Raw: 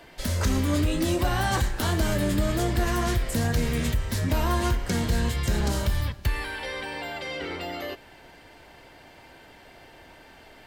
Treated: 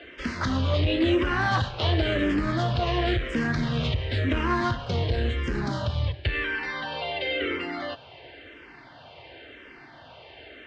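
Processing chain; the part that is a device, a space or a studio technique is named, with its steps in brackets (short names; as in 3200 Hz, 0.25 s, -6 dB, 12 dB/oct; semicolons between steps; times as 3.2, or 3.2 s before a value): barber-pole phaser into a guitar amplifier (endless phaser -0.95 Hz; soft clip -20 dBFS, distortion -19 dB; speaker cabinet 80–4100 Hz, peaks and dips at 190 Hz -10 dB, 870 Hz -5 dB, 3000 Hz +3 dB); 4.85–6.14 bell 2400 Hz -4.5 dB 2.3 oct; gain +7 dB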